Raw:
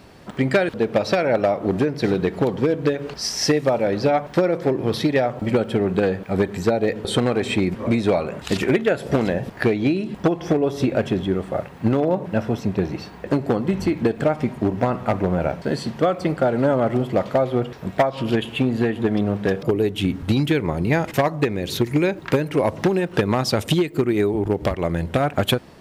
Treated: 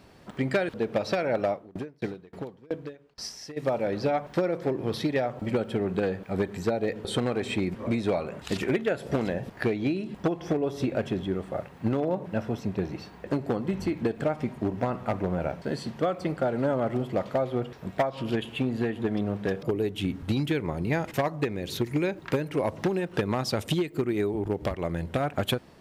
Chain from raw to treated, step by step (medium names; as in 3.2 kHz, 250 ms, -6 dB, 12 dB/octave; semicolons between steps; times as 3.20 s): 1.52–3.56 s: sawtooth tremolo in dB decaying 4.6 Hz -> 1.5 Hz, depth 30 dB; trim -7.5 dB